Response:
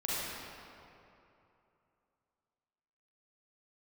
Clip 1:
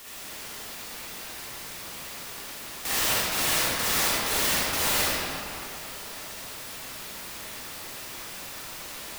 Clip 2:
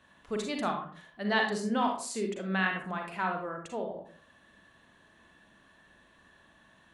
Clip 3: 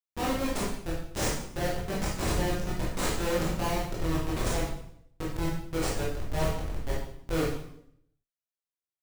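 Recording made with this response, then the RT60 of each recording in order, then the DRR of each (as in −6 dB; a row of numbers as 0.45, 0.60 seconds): 1; 2.9, 0.45, 0.70 seconds; −8.5, 2.0, −6.5 decibels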